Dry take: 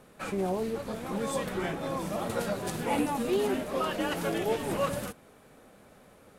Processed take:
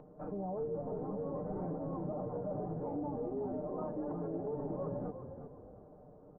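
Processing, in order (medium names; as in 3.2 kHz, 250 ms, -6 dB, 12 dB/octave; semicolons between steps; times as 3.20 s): Doppler pass-by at 2.82 s, 5 m/s, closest 4.1 m; inverse Chebyshev low-pass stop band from 3.7 kHz, stop band 70 dB; comb 6.6 ms, depth 86%; reverse; compression 6:1, threshold -42 dBFS, peak gain reduction 20 dB; reverse; peak limiter -39.5 dBFS, peak gain reduction 6.5 dB; upward compressor, threshold -60 dBFS; on a send: frequency-shifting echo 359 ms, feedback 33%, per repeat -32 Hz, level -8.5 dB; on the sum: trim +8 dB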